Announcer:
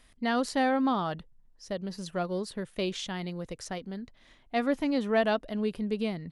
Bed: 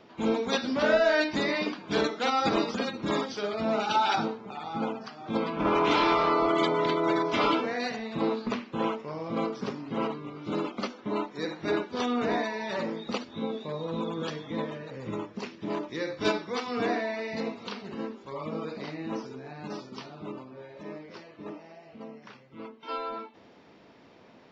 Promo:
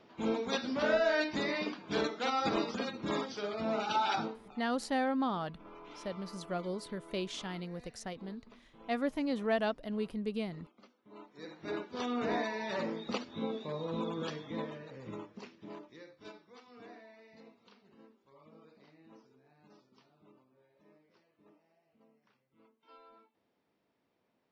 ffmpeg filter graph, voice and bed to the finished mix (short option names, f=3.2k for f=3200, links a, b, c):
-filter_complex "[0:a]adelay=4350,volume=-5.5dB[a];[1:a]volume=17.5dB,afade=t=out:st=4.15:d=0.55:silence=0.0841395,afade=t=in:st=11.08:d=1.43:silence=0.0668344,afade=t=out:st=14.08:d=2.08:silence=0.1[b];[a][b]amix=inputs=2:normalize=0"